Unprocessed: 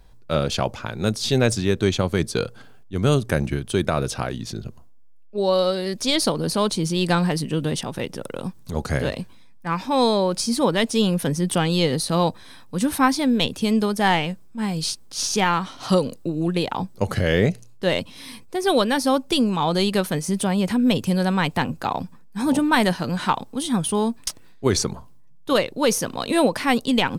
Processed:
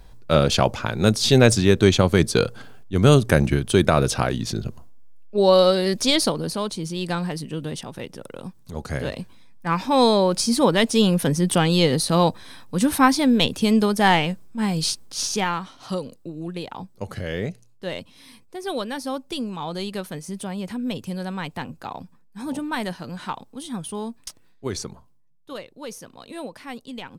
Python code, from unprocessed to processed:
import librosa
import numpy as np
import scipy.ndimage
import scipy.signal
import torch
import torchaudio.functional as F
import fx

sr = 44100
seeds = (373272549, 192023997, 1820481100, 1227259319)

y = fx.gain(x, sr, db=fx.line((5.94, 4.5), (6.65, -6.0), (8.78, -6.0), (9.69, 2.0), (15.01, 2.0), (15.85, -9.0), (24.86, -9.0), (25.55, -16.0)))